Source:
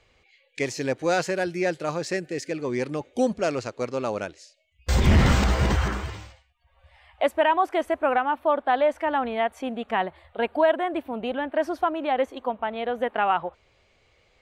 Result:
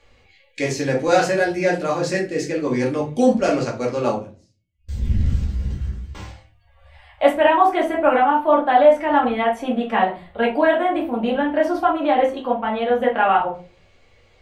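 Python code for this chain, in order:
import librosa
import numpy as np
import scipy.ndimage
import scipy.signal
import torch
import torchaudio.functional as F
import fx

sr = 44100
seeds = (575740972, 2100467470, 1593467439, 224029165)

y = fx.tone_stack(x, sr, knobs='10-0-1', at=(4.14, 6.15))
y = fx.room_shoebox(y, sr, seeds[0], volume_m3=190.0, walls='furnished', distance_m=2.3)
y = F.gain(torch.from_numpy(y), 1.0).numpy()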